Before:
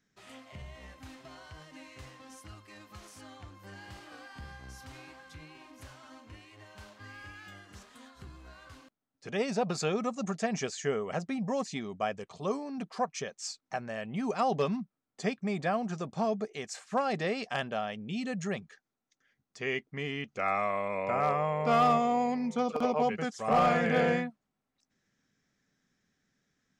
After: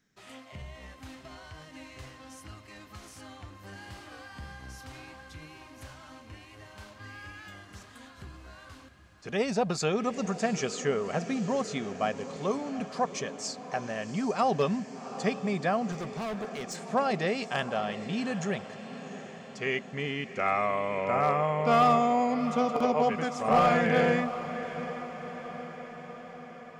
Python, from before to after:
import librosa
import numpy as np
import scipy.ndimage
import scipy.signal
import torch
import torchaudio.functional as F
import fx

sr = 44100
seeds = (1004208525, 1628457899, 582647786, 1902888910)

y = fx.echo_diffused(x, sr, ms=754, feedback_pct=62, wet_db=-12.5)
y = fx.clip_hard(y, sr, threshold_db=-34.5, at=(15.92, 16.76))
y = y * librosa.db_to_amplitude(2.5)